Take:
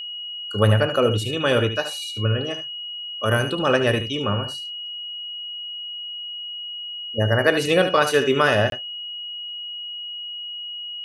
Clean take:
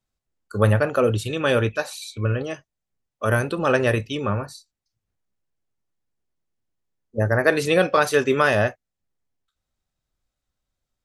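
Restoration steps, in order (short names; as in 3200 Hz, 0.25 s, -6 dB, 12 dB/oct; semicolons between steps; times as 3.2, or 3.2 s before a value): notch 2900 Hz, Q 30; interpolate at 8.7, 22 ms; inverse comb 74 ms -10 dB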